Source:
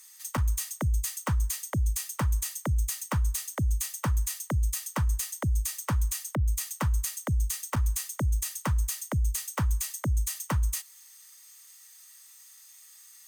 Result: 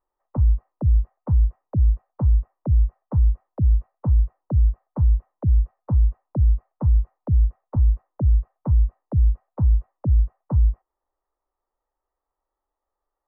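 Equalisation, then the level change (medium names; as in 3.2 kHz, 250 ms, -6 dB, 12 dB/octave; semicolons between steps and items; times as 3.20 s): inverse Chebyshev low-pass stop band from 3.5 kHz, stop band 70 dB; bass shelf 140 Hz +11.5 dB; 0.0 dB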